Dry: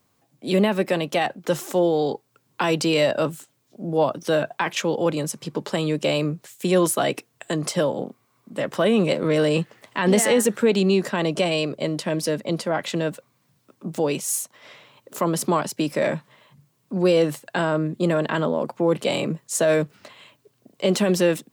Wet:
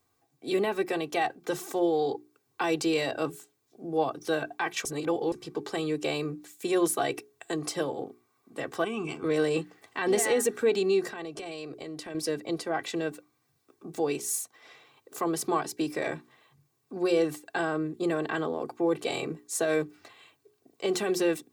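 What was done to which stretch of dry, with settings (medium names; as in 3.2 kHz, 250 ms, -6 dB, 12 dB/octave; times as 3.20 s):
4.85–5.32 s: reverse
8.84–9.24 s: static phaser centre 2.7 kHz, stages 8
11.08–12.15 s: compression 4:1, threshold -29 dBFS
whole clip: peaking EQ 3 kHz -4.5 dB 0.23 oct; hum notches 60/120/180/240/300/360/420 Hz; comb 2.6 ms, depth 69%; trim -7.5 dB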